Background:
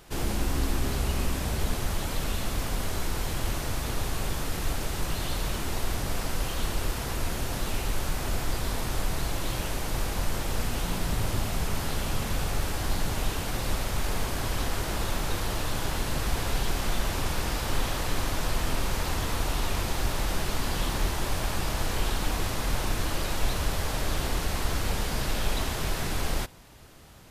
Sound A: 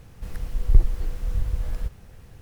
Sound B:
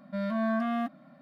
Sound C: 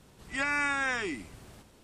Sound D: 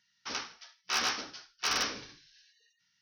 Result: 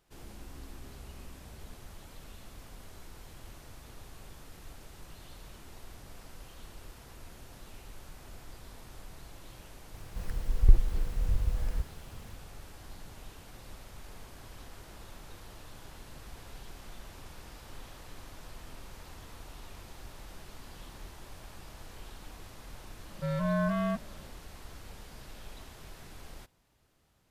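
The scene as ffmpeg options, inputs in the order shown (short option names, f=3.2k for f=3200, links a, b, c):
-filter_complex "[0:a]volume=-19.5dB[a];[2:a]afreqshift=-43[b];[1:a]atrim=end=2.41,asetpts=PTS-STARTPTS,volume=-3.5dB,afade=t=in:d=0.004:c=hsin,afade=t=out:st=2.406:d=0.004:c=hsin,adelay=438354S[c];[b]atrim=end=1.21,asetpts=PTS-STARTPTS,volume=-0.5dB,afade=t=in:d=0.004:c=hsin,afade=t=out:st=1.206:d=0.004:c=hsin,adelay=23090[d];[a][c][d]amix=inputs=3:normalize=0"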